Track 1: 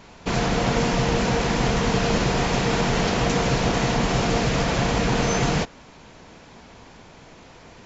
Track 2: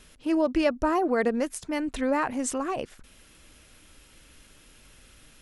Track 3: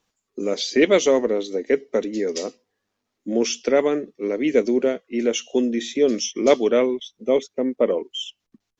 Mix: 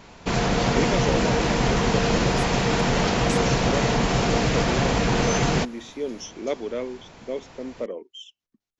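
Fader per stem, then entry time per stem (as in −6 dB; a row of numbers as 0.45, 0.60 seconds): 0.0, −10.0, −11.5 decibels; 0.00, 0.85, 0.00 seconds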